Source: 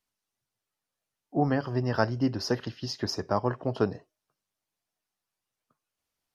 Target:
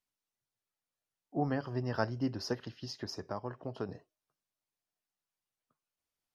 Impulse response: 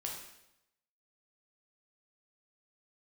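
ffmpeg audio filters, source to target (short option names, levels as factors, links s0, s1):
-filter_complex "[0:a]asettb=1/sr,asplit=3[s0][s1][s2];[s0]atrim=end=2.534[s3];[s1]atrim=start=2.53:end=3.89,asetpts=PTS-STARTPTS,afade=t=in:d=0.004:c=qsin,afade=t=out:st=1.356:d=0.004:c=qsin,acompressor=threshold=0.0282:ratio=2[s4];[s2]atrim=start=3.886[s5];[s3][s4]acrossfade=d=0.004:c1=hsin:c2=qsin[s6];[s6][s5]acrossfade=d=0.004:c1=qsin:c2=hsin,volume=0.447"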